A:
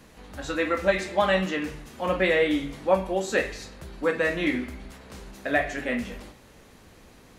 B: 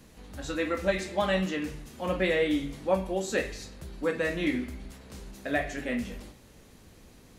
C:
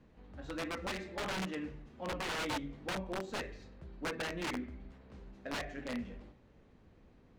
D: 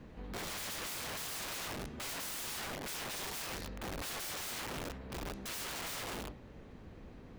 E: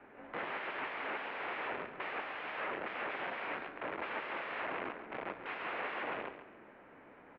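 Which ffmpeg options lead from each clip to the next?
ffmpeg -i in.wav -af "equalizer=frequency=1200:width=0.39:gain=-6.5" out.wav
ffmpeg -i in.wav -af "aeval=exprs='(mod(13.3*val(0)+1,2)-1)/13.3':channel_layout=same,adynamicsmooth=sensitivity=2.5:basefreq=2400,volume=-7.5dB" out.wav
ffmpeg -i in.wav -af "aeval=exprs='(mod(211*val(0)+1,2)-1)/211':channel_layout=same,volume=10dB" out.wav
ffmpeg -i in.wav -af "aecho=1:1:138|276|414|552:0.282|0.093|0.0307|0.0101,highpass=frequency=580:width_type=q:width=0.5412,highpass=frequency=580:width_type=q:width=1.307,lowpass=frequency=2700:width_type=q:width=0.5176,lowpass=frequency=2700:width_type=q:width=0.7071,lowpass=frequency=2700:width_type=q:width=1.932,afreqshift=-220,volume=6dB" out.wav

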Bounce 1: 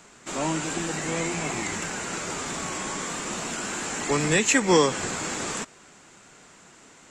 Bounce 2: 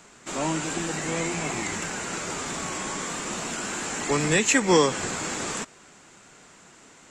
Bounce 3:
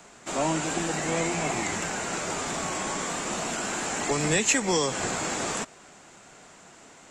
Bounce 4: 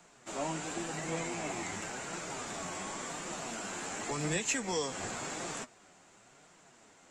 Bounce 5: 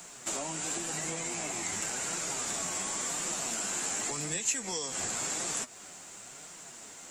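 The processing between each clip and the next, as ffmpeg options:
ffmpeg -i in.wav -af anull out.wav
ffmpeg -i in.wav -filter_complex "[0:a]equalizer=frequency=690:width=2.2:gain=5.5,acrossover=split=120|3400[link_01][link_02][link_03];[link_02]alimiter=limit=-17dB:level=0:latency=1:release=167[link_04];[link_01][link_04][link_03]amix=inputs=3:normalize=0" out.wav
ffmpeg -i in.wav -af "flanger=delay=5.5:depth=6.3:regen=47:speed=0.92:shape=triangular,volume=-5.5dB" out.wav
ffmpeg -i in.wav -af "acompressor=threshold=-44dB:ratio=5,aemphasis=mode=production:type=75kf,volume=6.5dB" out.wav

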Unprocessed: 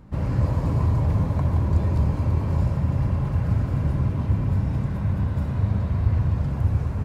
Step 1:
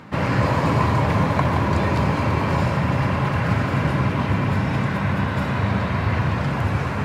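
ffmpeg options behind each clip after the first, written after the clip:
ffmpeg -i in.wav -af "highpass=150,equalizer=frequency=2200:width=0.43:gain=12.5,areverse,acompressor=mode=upward:threshold=-29dB:ratio=2.5,areverse,volume=6.5dB" out.wav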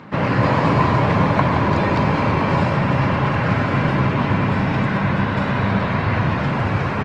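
ffmpeg -i in.wav -filter_complex "[0:a]highpass=110,lowpass=4900,asplit=2[link_01][link_02];[link_02]adelay=97,lowpass=frequency=2000:poles=1,volume=-12.5dB,asplit=2[link_03][link_04];[link_04]adelay=97,lowpass=frequency=2000:poles=1,volume=0.17[link_05];[link_01][link_03][link_05]amix=inputs=3:normalize=0,volume=3.5dB" -ar 48000 -c:a libopus -b:a 24k out.opus

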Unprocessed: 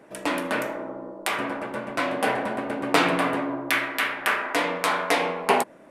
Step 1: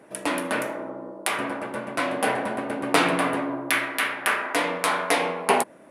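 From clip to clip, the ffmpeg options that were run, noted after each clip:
ffmpeg -i in.wav -af "highpass=44,equalizer=frequency=10000:width=4.9:gain=10.5" out.wav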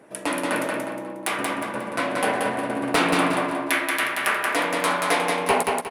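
ffmpeg -i in.wav -filter_complex "[0:a]volume=11.5dB,asoftclip=hard,volume=-11.5dB,asplit=2[link_01][link_02];[link_02]aecho=0:1:180|360|540|720|900:0.668|0.241|0.0866|0.0312|0.0112[link_03];[link_01][link_03]amix=inputs=2:normalize=0" out.wav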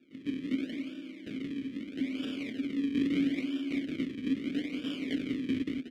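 ffmpeg -i in.wav -filter_complex "[0:a]acrusher=samples=42:mix=1:aa=0.000001:lfo=1:lforange=42:lforate=0.77,asplit=3[link_01][link_02][link_03];[link_01]bandpass=frequency=270:width_type=q:width=8,volume=0dB[link_04];[link_02]bandpass=frequency=2290:width_type=q:width=8,volume=-6dB[link_05];[link_03]bandpass=frequency=3010:width_type=q:width=8,volume=-9dB[link_06];[link_04][link_05][link_06]amix=inputs=3:normalize=0" out.wav

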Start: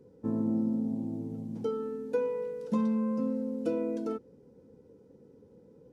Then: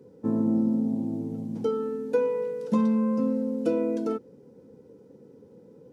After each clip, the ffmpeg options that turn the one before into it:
ffmpeg -i in.wav -af "highpass=110,volume=5.5dB" out.wav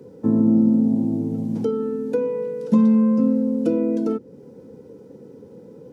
ffmpeg -i in.wav -filter_complex "[0:a]acrossover=split=380[link_01][link_02];[link_02]acompressor=threshold=-46dB:ratio=2[link_03];[link_01][link_03]amix=inputs=2:normalize=0,volume=8.5dB" out.wav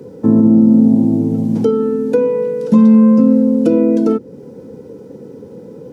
ffmpeg -i in.wav -af "alimiter=level_in=10dB:limit=-1dB:release=50:level=0:latency=1,volume=-1dB" out.wav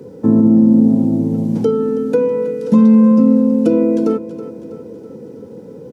ffmpeg -i in.wav -af "aecho=1:1:324|648|972|1296|1620|1944:0.2|0.11|0.0604|0.0332|0.0183|0.01,volume=-1dB" out.wav

